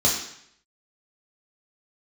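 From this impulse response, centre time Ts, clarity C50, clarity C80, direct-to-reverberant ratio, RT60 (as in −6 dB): 37 ms, 4.5 dB, 7.5 dB, −3.5 dB, 0.70 s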